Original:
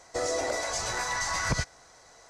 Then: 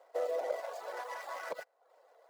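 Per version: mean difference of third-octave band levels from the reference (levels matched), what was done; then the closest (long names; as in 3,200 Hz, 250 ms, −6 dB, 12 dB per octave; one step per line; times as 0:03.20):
11.0 dB: running median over 15 samples
reverb reduction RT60 0.53 s
four-pole ladder high-pass 470 Hz, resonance 60%
level +1 dB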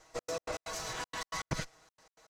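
6.5 dB: lower of the sound and its delayed copy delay 6.3 ms
high-shelf EQ 11,000 Hz −12 dB
gate pattern "xx.x.x.xx" 159 BPM −60 dB
level −5 dB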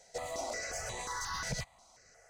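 4.0 dB: in parallel at −10 dB: wave folding −27.5 dBFS
on the sum: parametric band 310 Hz −9.5 dB 0.27 octaves
step-sequenced phaser 5.6 Hz 300–5,200 Hz
level −6.5 dB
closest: third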